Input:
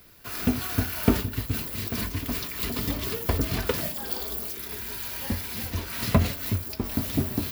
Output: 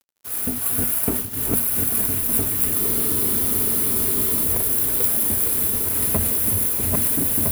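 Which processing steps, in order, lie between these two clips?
regenerating reverse delay 0.655 s, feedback 61%, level -1 dB; notches 60/120/180/240 Hz; in parallel at -6 dB: hard clip -20.5 dBFS, distortion -11 dB; on the sum: resonant high shelf 7200 Hz +12.5 dB, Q 3; crossover distortion -28 dBFS; reverse; upward compressor, threshold -21 dBFS; reverse; bell 430 Hz +3.5 dB 1.8 oct; spectral freeze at 2.81, 1.64 s; bloom reverb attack 2.09 s, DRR 5.5 dB; gain -6 dB

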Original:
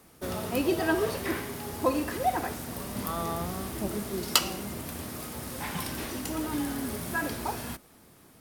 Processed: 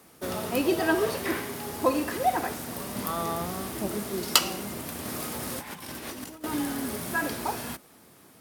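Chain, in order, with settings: HPF 160 Hz 6 dB/oct; 5.05–6.44 negative-ratio compressor -39 dBFS, ratio -0.5; gain +2.5 dB

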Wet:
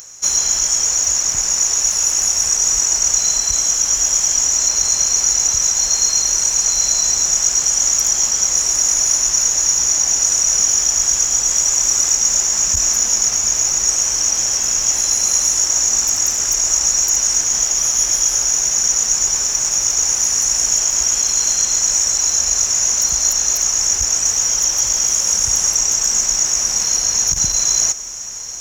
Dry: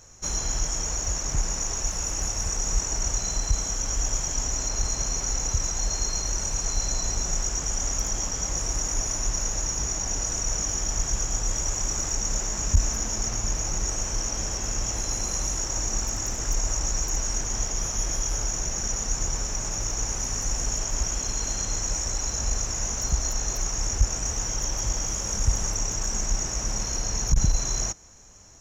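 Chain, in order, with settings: upward compressor, threshold -48 dBFS; tilt +3.5 dB/oct; diffused feedback echo 1.711 s, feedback 59%, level -14 dB; gain +5 dB

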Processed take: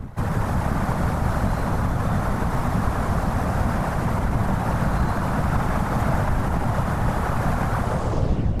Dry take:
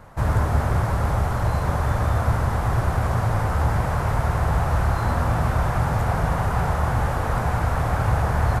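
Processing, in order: tape stop at the end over 0.83 s; wind noise 82 Hz -26 dBFS; limiter -14.5 dBFS, peak gain reduction 10.5 dB; reverse; upward compressor, threshold -26 dBFS; reverse; crossover distortion -56.5 dBFS; whisperiser; on a send: split-band echo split 580 Hz, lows 0.701 s, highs 0.161 s, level -6.5 dB

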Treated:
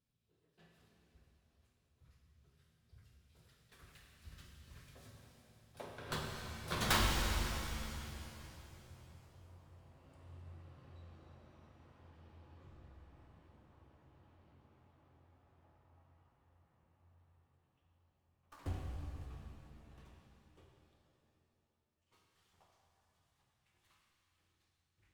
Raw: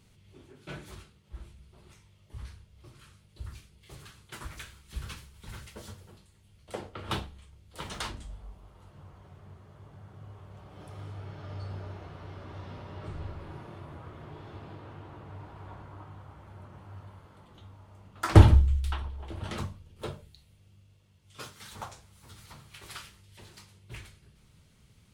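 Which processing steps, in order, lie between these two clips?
tracing distortion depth 0.18 ms; Doppler pass-by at 6.99, 48 m/s, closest 11 m; shimmer reverb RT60 3 s, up +7 st, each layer -8 dB, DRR -0.5 dB; gain +4 dB

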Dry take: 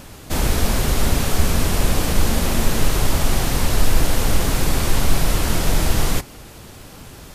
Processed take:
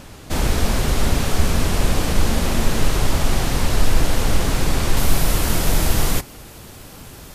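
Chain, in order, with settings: high shelf 11000 Hz -8 dB, from 4.97 s +5.5 dB

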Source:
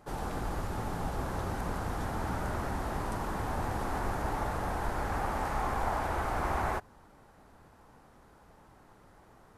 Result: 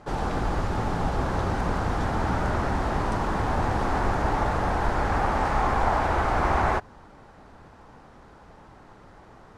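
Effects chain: LPF 5900 Hz 12 dB/oct; gain +8.5 dB

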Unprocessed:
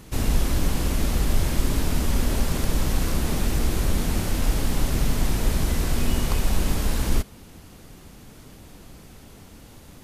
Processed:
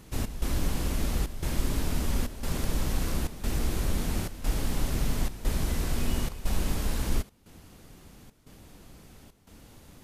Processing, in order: step gate "xxx..xxxxxxx" 179 bpm -12 dB; gain -5.5 dB

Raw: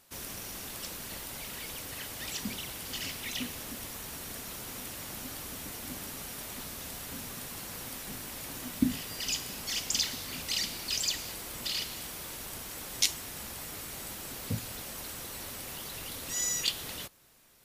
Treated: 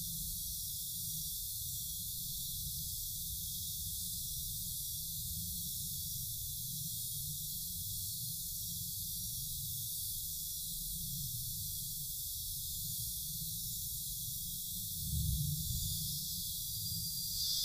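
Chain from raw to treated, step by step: FFT band-reject 180–3300 Hz; added harmonics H 6 -30 dB, 7 -12 dB, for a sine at -5 dBFS; Paulstretch 5.8×, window 0.10 s, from 6.2; gain +4.5 dB

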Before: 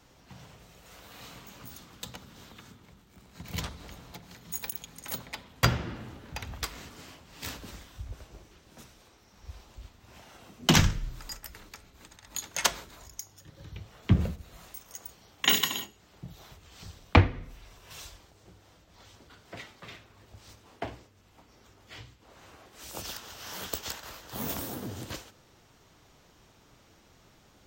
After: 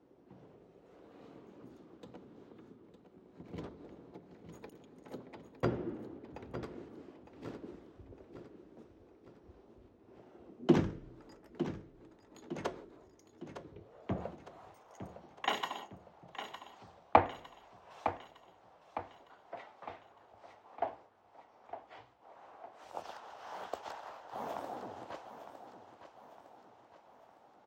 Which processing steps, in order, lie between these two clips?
band-pass sweep 360 Hz -> 770 Hz, 13.71–14.24; feedback echo 0.908 s, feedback 48%, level -10.5 dB; gain +4.5 dB

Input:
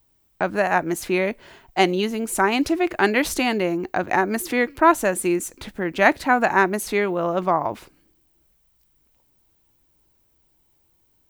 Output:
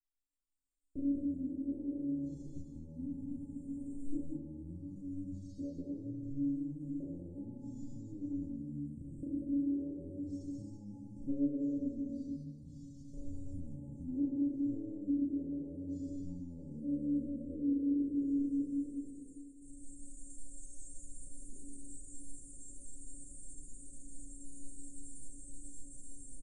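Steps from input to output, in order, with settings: spectral trails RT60 0.86 s; recorder AGC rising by 29 dB/s; gate with hold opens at -26 dBFS; EQ curve 4400 Hz 0 dB, 8200 Hz +5 dB, 12000 Hz -7 dB; speed mistake 78 rpm record played at 33 rpm; compressor 2.5:1, threshold -24 dBFS, peak gain reduction 11.5 dB; Chebyshev band-stop 480–7100 Hz, order 4; low shelf 240 Hz +7 dB; metallic resonator 280 Hz, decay 0.37 s, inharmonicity 0.002; loudspeakers at several distances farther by 12 m -2 dB, 66 m -4 dB; gain -2.5 dB

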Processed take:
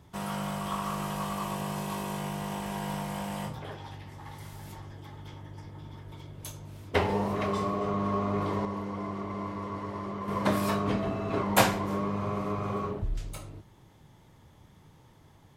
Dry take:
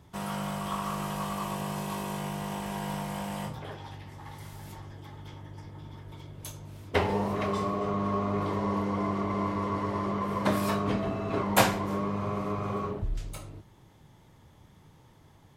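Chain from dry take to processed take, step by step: 8.65–10.28 resonator 97 Hz, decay 1.6 s, mix 50%

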